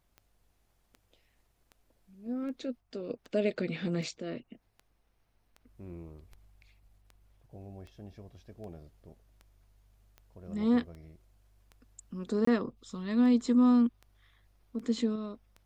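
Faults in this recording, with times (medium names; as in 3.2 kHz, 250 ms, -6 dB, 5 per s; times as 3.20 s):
tick 78 rpm -35 dBFS
12.45–12.47 s: dropout 24 ms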